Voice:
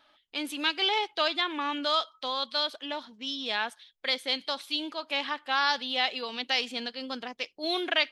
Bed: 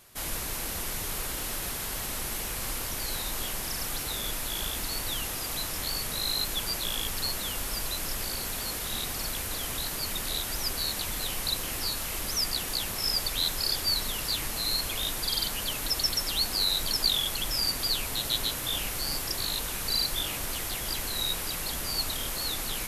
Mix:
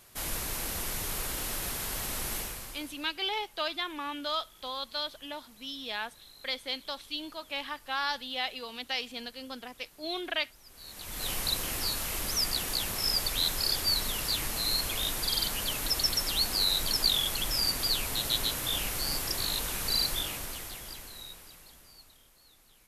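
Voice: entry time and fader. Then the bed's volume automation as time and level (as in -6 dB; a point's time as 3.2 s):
2.40 s, -5.5 dB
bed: 2.38 s -1 dB
3.14 s -25 dB
10.64 s -25 dB
11.29 s -0.5 dB
20.09 s -0.5 dB
22.32 s -29 dB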